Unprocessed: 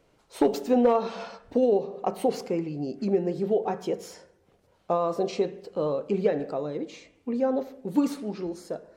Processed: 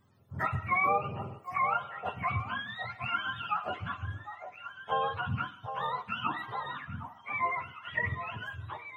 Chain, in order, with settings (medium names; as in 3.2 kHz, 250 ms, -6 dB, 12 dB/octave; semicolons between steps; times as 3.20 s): spectrum inverted on a logarithmic axis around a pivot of 740 Hz; bass shelf 150 Hz +7 dB; on a send: repeats whose band climbs or falls 758 ms, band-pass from 730 Hz, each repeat 1.4 oct, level -7 dB; on the sum: trim -4 dB